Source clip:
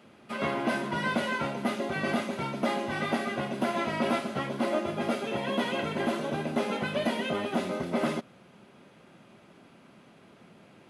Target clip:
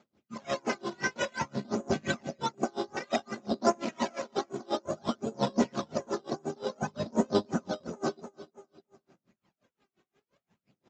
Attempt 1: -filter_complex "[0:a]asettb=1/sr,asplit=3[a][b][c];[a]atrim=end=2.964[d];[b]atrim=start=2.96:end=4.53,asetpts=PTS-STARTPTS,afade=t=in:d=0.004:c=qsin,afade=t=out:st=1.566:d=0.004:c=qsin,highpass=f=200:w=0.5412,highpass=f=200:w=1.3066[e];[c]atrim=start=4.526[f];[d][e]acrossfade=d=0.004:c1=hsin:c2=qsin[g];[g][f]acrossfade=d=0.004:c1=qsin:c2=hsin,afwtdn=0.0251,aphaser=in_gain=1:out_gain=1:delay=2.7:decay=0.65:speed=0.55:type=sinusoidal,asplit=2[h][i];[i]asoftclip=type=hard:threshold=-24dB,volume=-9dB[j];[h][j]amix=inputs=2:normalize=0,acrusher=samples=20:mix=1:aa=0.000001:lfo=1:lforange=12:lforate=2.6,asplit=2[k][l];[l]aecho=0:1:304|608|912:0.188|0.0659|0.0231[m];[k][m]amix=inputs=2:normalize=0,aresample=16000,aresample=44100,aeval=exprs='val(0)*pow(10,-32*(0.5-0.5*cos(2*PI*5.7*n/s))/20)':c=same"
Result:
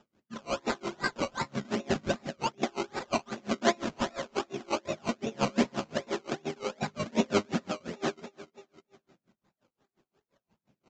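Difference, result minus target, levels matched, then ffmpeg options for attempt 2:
decimation with a swept rate: distortion +9 dB
-filter_complex "[0:a]asettb=1/sr,asplit=3[a][b][c];[a]atrim=end=2.964[d];[b]atrim=start=2.96:end=4.53,asetpts=PTS-STARTPTS,afade=t=in:d=0.004:c=qsin,afade=t=out:st=1.566:d=0.004:c=qsin,highpass=f=200:w=0.5412,highpass=f=200:w=1.3066[e];[c]atrim=start=4.526[f];[d][e]acrossfade=d=0.004:c1=hsin:c2=qsin[g];[g][f]acrossfade=d=0.004:c1=qsin:c2=hsin,afwtdn=0.0251,aphaser=in_gain=1:out_gain=1:delay=2.7:decay=0.65:speed=0.55:type=sinusoidal,asplit=2[h][i];[i]asoftclip=type=hard:threshold=-24dB,volume=-9dB[j];[h][j]amix=inputs=2:normalize=0,acrusher=samples=8:mix=1:aa=0.000001:lfo=1:lforange=4.8:lforate=2.6,asplit=2[k][l];[l]aecho=0:1:304|608|912:0.188|0.0659|0.0231[m];[k][m]amix=inputs=2:normalize=0,aresample=16000,aresample=44100,aeval=exprs='val(0)*pow(10,-32*(0.5-0.5*cos(2*PI*5.7*n/s))/20)':c=same"

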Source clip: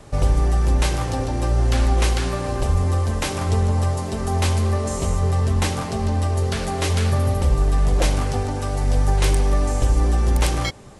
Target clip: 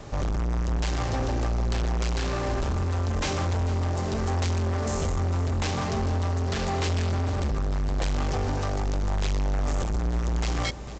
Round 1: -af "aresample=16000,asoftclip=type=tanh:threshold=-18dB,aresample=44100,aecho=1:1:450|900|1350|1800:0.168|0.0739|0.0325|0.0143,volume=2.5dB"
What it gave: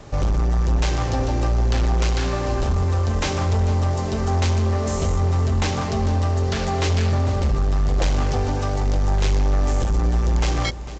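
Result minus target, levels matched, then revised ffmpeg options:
soft clip: distortion -6 dB
-af "aresample=16000,asoftclip=type=tanh:threshold=-27dB,aresample=44100,aecho=1:1:450|900|1350|1800:0.168|0.0739|0.0325|0.0143,volume=2.5dB"

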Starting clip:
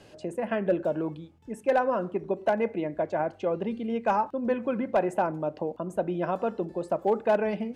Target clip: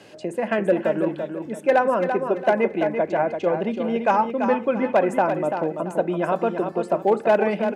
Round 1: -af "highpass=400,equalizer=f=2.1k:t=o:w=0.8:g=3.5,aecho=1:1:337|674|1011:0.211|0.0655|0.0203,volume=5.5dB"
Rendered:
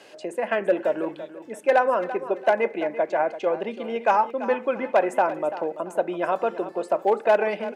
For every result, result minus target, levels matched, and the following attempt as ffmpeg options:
125 Hz band -11.0 dB; echo-to-direct -6.5 dB
-af "highpass=150,equalizer=f=2.1k:t=o:w=0.8:g=3.5,aecho=1:1:337|674|1011:0.211|0.0655|0.0203,volume=5.5dB"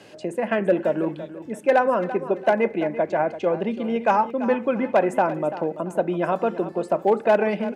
echo-to-direct -6.5 dB
-af "highpass=150,equalizer=f=2.1k:t=o:w=0.8:g=3.5,aecho=1:1:337|674|1011|1348:0.447|0.138|0.0429|0.0133,volume=5.5dB"

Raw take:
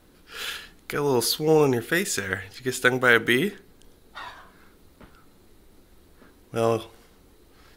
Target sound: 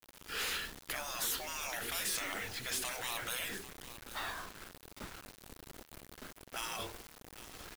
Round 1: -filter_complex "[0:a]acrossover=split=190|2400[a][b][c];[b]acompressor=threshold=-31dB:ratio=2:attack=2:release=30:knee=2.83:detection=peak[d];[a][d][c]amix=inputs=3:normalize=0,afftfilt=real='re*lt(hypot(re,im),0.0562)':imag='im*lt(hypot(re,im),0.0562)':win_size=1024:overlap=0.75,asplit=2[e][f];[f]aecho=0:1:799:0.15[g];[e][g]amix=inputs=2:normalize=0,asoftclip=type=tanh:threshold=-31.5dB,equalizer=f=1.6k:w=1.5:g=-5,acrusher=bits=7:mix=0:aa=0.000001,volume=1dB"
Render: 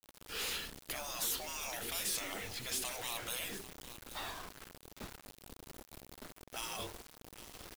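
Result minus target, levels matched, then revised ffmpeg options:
2000 Hz band -3.0 dB
-filter_complex "[0:a]acrossover=split=190|2400[a][b][c];[b]acompressor=threshold=-31dB:ratio=2:attack=2:release=30:knee=2.83:detection=peak[d];[a][d][c]amix=inputs=3:normalize=0,afftfilt=real='re*lt(hypot(re,im),0.0562)':imag='im*lt(hypot(re,im),0.0562)':win_size=1024:overlap=0.75,asplit=2[e][f];[f]aecho=0:1:799:0.15[g];[e][g]amix=inputs=2:normalize=0,asoftclip=type=tanh:threshold=-31.5dB,equalizer=f=1.6k:w=1.5:g=2,acrusher=bits=7:mix=0:aa=0.000001,volume=1dB"

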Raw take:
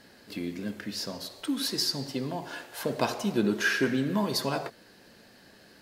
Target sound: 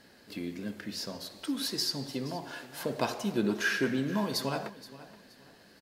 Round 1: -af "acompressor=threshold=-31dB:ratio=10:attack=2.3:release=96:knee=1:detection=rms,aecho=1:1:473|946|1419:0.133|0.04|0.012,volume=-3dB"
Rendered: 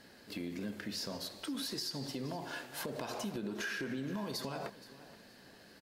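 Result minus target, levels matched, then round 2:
compressor: peak gain reduction +14 dB
-af "aecho=1:1:473|946|1419:0.133|0.04|0.012,volume=-3dB"

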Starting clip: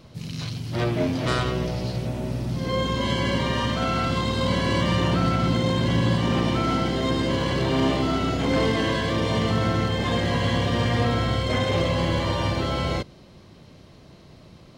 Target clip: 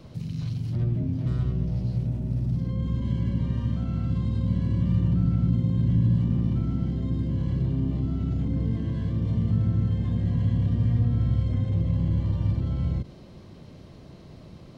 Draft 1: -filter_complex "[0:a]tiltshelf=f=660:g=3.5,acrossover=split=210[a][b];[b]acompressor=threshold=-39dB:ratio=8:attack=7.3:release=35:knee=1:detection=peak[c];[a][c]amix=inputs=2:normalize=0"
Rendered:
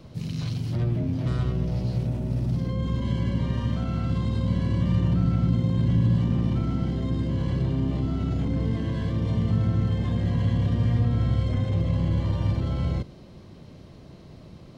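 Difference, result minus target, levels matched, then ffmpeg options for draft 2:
compressor: peak gain reduction -8.5 dB
-filter_complex "[0:a]tiltshelf=f=660:g=3.5,acrossover=split=210[a][b];[b]acompressor=threshold=-48.5dB:ratio=8:attack=7.3:release=35:knee=1:detection=peak[c];[a][c]amix=inputs=2:normalize=0"

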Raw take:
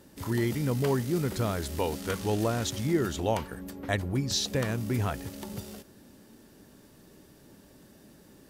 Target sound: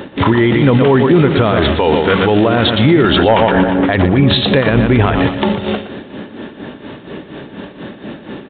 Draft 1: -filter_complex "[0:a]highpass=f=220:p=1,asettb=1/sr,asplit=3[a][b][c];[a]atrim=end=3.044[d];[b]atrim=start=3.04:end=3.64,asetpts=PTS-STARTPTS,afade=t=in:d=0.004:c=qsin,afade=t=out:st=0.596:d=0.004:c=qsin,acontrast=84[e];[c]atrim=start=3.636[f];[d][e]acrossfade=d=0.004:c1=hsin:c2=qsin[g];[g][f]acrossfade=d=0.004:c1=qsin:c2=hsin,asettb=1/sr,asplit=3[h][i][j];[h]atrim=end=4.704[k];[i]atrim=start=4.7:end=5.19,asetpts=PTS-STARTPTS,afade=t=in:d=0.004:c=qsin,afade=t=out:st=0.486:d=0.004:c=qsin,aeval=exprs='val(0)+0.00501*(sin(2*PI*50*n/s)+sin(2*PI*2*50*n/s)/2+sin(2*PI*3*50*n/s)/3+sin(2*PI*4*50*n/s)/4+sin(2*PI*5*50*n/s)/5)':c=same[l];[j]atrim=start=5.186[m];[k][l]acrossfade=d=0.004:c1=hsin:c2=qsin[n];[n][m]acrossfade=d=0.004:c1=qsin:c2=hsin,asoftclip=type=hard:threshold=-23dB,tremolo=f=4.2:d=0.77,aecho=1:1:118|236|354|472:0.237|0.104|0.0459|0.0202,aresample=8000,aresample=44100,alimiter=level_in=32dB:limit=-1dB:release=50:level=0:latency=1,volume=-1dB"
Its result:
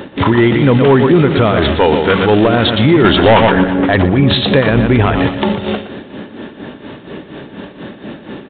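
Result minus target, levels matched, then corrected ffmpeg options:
hard clip: distortion +12 dB
-filter_complex "[0:a]highpass=f=220:p=1,asettb=1/sr,asplit=3[a][b][c];[a]atrim=end=3.044[d];[b]atrim=start=3.04:end=3.64,asetpts=PTS-STARTPTS,afade=t=in:d=0.004:c=qsin,afade=t=out:st=0.596:d=0.004:c=qsin,acontrast=84[e];[c]atrim=start=3.636[f];[d][e]acrossfade=d=0.004:c1=hsin:c2=qsin[g];[g][f]acrossfade=d=0.004:c1=qsin:c2=hsin,asettb=1/sr,asplit=3[h][i][j];[h]atrim=end=4.704[k];[i]atrim=start=4.7:end=5.19,asetpts=PTS-STARTPTS,afade=t=in:d=0.004:c=qsin,afade=t=out:st=0.486:d=0.004:c=qsin,aeval=exprs='val(0)+0.00501*(sin(2*PI*50*n/s)+sin(2*PI*2*50*n/s)/2+sin(2*PI*3*50*n/s)/3+sin(2*PI*4*50*n/s)/4+sin(2*PI*5*50*n/s)/5)':c=same[l];[j]atrim=start=5.186[m];[k][l]acrossfade=d=0.004:c1=hsin:c2=qsin[n];[n][m]acrossfade=d=0.004:c1=qsin:c2=hsin,asoftclip=type=hard:threshold=-13dB,tremolo=f=4.2:d=0.77,aecho=1:1:118|236|354|472:0.237|0.104|0.0459|0.0202,aresample=8000,aresample=44100,alimiter=level_in=32dB:limit=-1dB:release=50:level=0:latency=1,volume=-1dB"

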